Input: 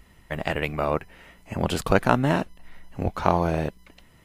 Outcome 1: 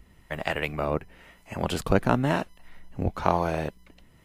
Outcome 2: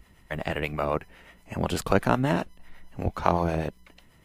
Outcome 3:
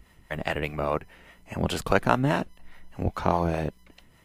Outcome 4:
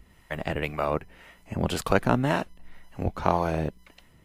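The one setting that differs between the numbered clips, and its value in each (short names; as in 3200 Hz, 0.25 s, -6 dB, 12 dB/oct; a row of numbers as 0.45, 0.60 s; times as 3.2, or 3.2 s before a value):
harmonic tremolo, rate: 1, 8.1, 4.9, 1.9 Hz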